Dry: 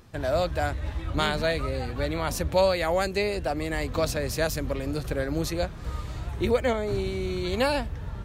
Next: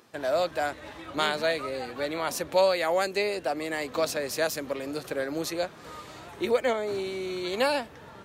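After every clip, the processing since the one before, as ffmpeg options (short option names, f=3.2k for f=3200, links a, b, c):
-af "highpass=300"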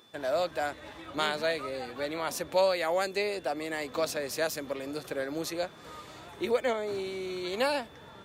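-af "aeval=exprs='val(0)+0.00158*sin(2*PI*3500*n/s)':c=same,volume=-3dB"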